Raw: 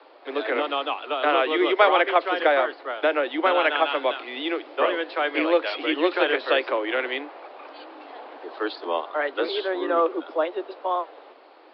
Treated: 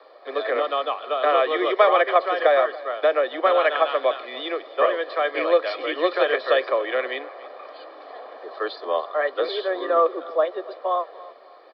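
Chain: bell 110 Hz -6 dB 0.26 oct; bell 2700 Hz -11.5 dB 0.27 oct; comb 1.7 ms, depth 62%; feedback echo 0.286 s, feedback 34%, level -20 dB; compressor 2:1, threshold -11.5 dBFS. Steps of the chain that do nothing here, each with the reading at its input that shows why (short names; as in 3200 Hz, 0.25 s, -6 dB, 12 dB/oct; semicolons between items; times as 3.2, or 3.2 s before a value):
bell 110 Hz: input band starts at 240 Hz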